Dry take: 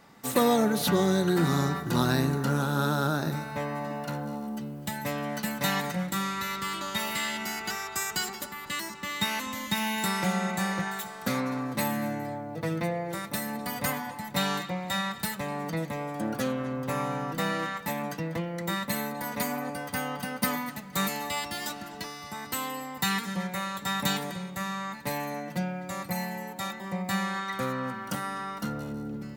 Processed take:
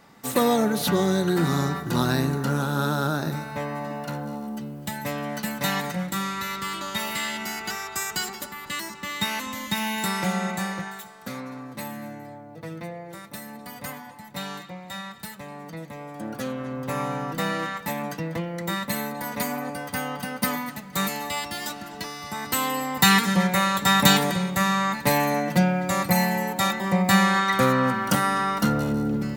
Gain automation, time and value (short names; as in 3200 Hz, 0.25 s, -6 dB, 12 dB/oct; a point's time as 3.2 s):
10.49 s +2 dB
11.16 s -6 dB
15.77 s -6 dB
17.03 s +2.5 dB
21.83 s +2.5 dB
23.1 s +11 dB